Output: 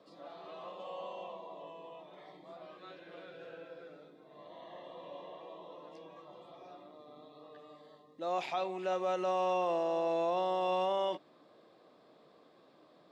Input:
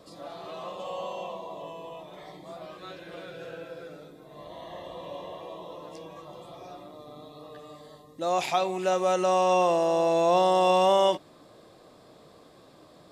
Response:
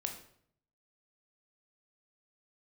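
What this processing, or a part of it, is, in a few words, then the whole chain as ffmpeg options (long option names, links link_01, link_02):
DJ mixer with the lows and highs turned down: -filter_complex "[0:a]acrossover=split=160 4700:gain=0.0891 1 0.141[link_01][link_02][link_03];[link_01][link_02][link_03]amix=inputs=3:normalize=0,alimiter=limit=-16.5dB:level=0:latency=1:release=30,volume=-8dB"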